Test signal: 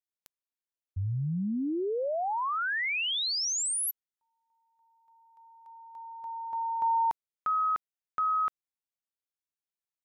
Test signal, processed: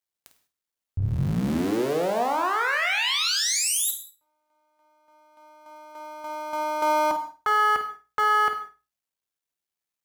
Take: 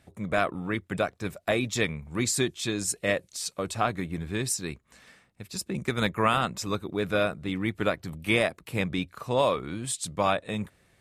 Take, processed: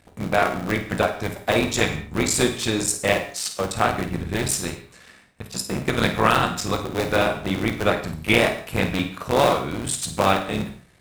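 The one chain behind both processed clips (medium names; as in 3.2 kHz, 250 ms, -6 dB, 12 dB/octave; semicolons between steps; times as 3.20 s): cycle switcher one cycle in 3, muted; hum notches 60/120 Hz; flutter echo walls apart 8.8 m, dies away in 0.28 s; gated-style reverb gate 220 ms falling, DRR 6.5 dB; trim +6.5 dB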